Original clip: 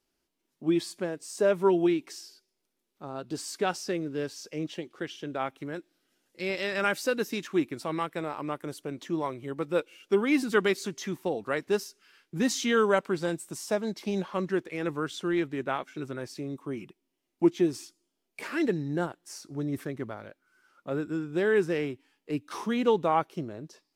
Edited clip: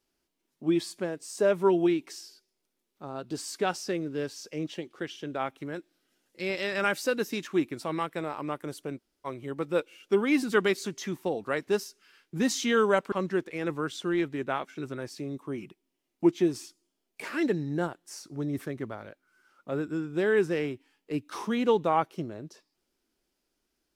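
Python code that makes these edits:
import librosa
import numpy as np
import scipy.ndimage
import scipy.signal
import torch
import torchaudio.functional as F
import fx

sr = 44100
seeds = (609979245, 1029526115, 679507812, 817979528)

y = fx.edit(x, sr, fx.room_tone_fill(start_s=8.98, length_s=0.28, crossfade_s=0.04),
    fx.cut(start_s=13.12, length_s=1.19), tone=tone)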